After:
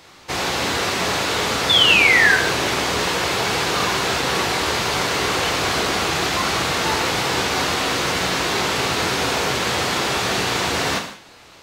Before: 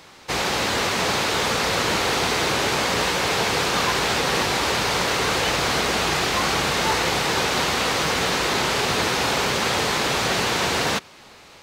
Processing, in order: painted sound fall, 1.69–2.36, 1500–3600 Hz -15 dBFS; non-linear reverb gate 0.23 s falling, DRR 2.5 dB; gain -1 dB

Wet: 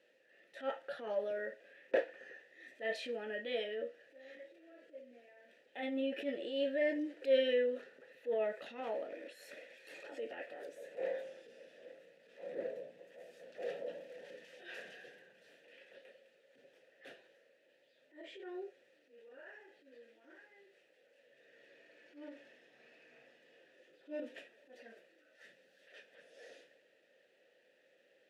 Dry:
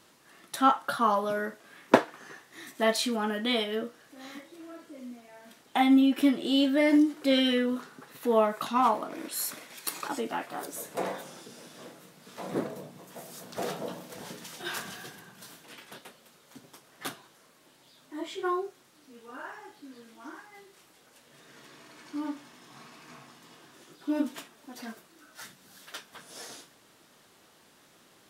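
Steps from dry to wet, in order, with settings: transient shaper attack -9 dB, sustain +3 dB; vowel filter e; 7.22–7.82 mismatched tape noise reduction encoder only; gain +2.5 dB

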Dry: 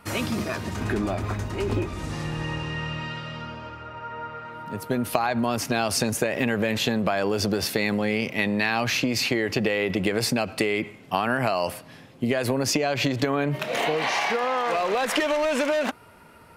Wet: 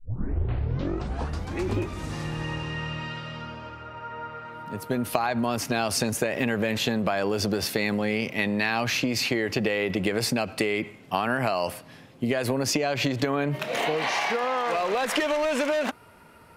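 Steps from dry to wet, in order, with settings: tape start at the beginning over 1.79 s; gain -1.5 dB

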